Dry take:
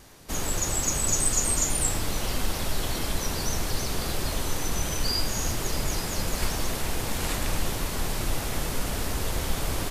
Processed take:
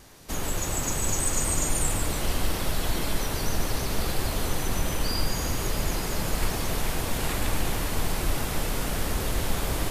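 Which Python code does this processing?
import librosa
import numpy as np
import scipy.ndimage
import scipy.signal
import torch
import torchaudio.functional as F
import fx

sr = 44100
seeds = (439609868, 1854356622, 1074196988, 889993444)

p1 = fx.dynamic_eq(x, sr, hz=5900.0, q=1.0, threshold_db=-39.0, ratio=4.0, max_db=-6)
y = p1 + fx.echo_split(p1, sr, split_hz=2400.0, low_ms=441, high_ms=145, feedback_pct=52, wet_db=-5.5, dry=0)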